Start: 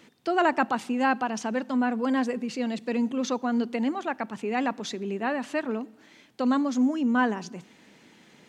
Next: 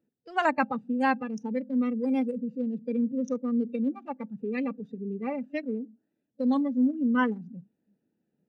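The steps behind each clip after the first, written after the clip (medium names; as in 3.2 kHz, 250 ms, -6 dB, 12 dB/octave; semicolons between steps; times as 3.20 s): local Wiener filter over 41 samples; spectral noise reduction 19 dB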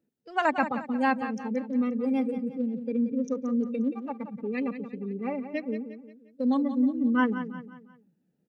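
feedback delay 177 ms, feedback 42%, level -11 dB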